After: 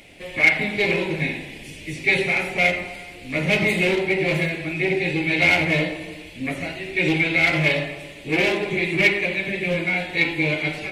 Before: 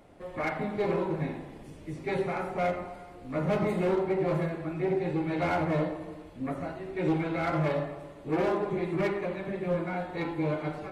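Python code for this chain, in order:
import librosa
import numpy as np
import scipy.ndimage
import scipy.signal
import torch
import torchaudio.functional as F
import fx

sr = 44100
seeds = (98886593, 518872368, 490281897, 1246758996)

y = fx.high_shelf_res(x, sr, hz=1700.0, db=11.5, q=3.0)
y = y * librosa.db_to_amplitude(5.5)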